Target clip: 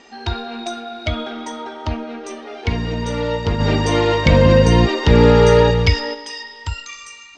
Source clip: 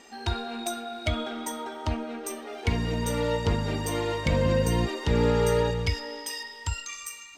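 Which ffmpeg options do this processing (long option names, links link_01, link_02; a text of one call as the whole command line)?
ffmpeg -i in.wav -filter_complex "[0:a]lowpass=frequency=5900:width=0.5412,lowpass=frequency=5900:width=1.3066,asplit=3[link_01][link_02][link_03];[link_01]afade=type=out:start_time=3.59:duration=0.02[link_04];[link_02]acontrast=83,afade=type=in:start_time=3.59:duration=0.02,afade=type=out:start_time=6.13:duration=0.02[link_05];[link_03]afade=type=in:start_time=6.13:duration=0.02[link_06];[link_04][link_05][link_06]amix=inputs=3:normalize=0,volume=5.5dB" out.wav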